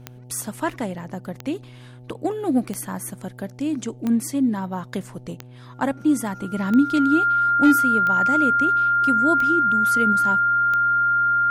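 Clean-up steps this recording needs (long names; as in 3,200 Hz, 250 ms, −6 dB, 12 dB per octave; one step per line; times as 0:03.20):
clipped peaks rebuilt −8 dBFS
click removal
hum removal 124.2 Hz, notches 7
notch filter 1,400 Hz, Q 30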